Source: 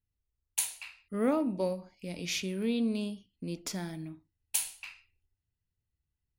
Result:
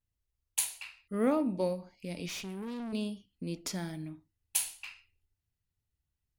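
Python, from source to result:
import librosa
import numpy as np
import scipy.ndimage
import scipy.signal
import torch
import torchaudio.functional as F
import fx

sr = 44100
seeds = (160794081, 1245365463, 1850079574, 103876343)

y = fx.vibrato(x, sr, rate_hz=0.45, depth_cents=30.0)
y = fx.tube_stage(y, sr, drive_db=37.0, bias=0.55, at=(2.28, 2.93))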